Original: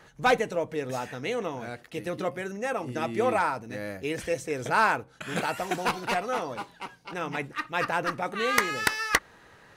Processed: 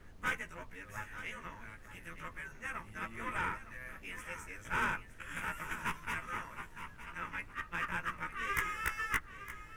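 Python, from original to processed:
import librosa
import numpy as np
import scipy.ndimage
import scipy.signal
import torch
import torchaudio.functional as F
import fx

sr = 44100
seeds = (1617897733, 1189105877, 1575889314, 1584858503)

p1 = fx.frame_reverse(x, sr, frame_ms=35.0)
p2 = fx.low_shelf_res(p1, sr, hz=600.0, db=-9.5, q=3.0)
p3 = fx.tube_stage(p2, sr, drive_db=24.0, bias=0.75)
p4 = fx.fixed_phaser(p3, sr, hz=1800.0, stages=4)
p5 = fx.dmg_noise_colour(p4, sr, seeds[0], colour='brown', level_db=-53.0)
y = p5 + fx.echo_single(p5, sr, ms=913, db=-13.0, dry=0)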